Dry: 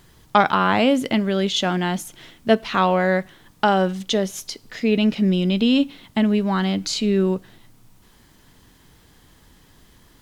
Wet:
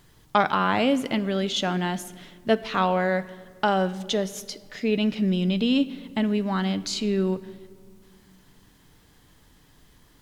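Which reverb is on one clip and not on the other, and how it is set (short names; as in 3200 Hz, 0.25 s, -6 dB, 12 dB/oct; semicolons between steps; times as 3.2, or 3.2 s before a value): shoebox room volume 3500 m³, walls mixed, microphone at 0.4 m; gain -4.5 dB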